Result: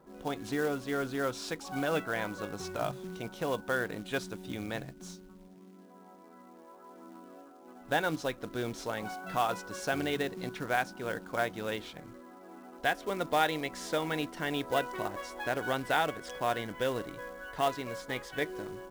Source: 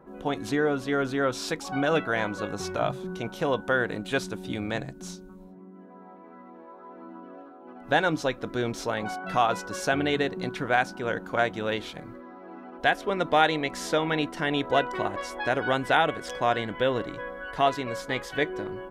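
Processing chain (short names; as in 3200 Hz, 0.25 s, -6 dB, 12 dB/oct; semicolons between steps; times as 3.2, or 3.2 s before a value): short-mantissa float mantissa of 2-bit; gain -6.5 dB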